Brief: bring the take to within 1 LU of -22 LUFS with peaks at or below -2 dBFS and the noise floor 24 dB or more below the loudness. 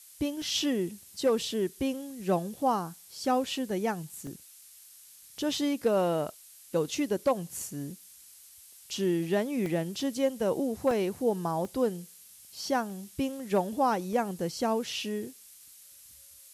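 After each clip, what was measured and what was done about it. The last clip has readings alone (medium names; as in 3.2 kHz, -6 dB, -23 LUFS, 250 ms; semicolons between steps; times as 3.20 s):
dropouts 8; longest dropout 1.3 ms; noise floor -53 dBFS; noise floor target -55 dBFS; loudness -30.5 LUFS; peak level -15.5 dBFS; loudness target -22.0 LUFS
-> interpolate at 0.42/3.56/4.27/9.66/10.91/11.65/12.90/14.13 s, 1.3 ms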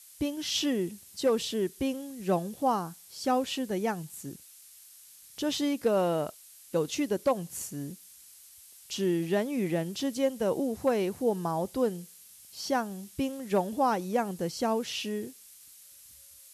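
dropouts 0; noise floor -53 dBFS; noise floor target -55 dBFS
-> noise reduction 6 dB, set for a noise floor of -53 dBFS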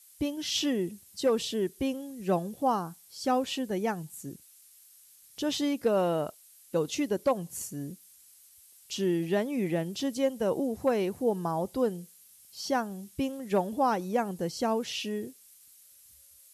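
noise floor -57 dBFS; loudness -30.5 LUFS; peak level -15.5 dBFS; loudness target -22.0 LUFS
-> trim +8.5 dB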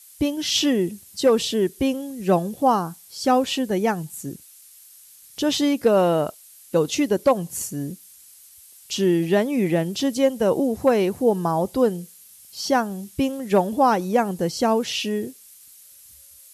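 loudness -22.0 LUFS; peak level -7.0 dBFS; noise floor -49 dBFS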